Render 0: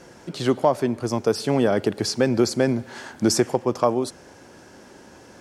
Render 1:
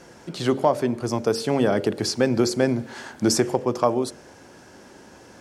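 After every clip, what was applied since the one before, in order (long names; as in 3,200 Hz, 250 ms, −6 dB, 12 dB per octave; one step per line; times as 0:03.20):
hum removal 45.51 Hz, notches 14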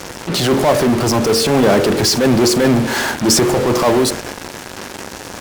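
transient designer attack −12 dB, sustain 0 dB
in parallel at −8.5 dB: fuzz pedal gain 48 dB, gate −44 dBFS
on the sum: level +5 dB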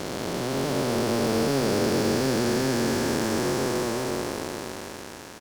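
spectrum smeared in time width 1,300 ms
double-tracking delay 22 ms −13 dB
level −7.5 dB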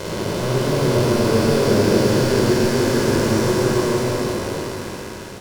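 convolution reverb RT60 0.85 s, pre-delay 20 ms, DRR 0.5 dB
level +1 dB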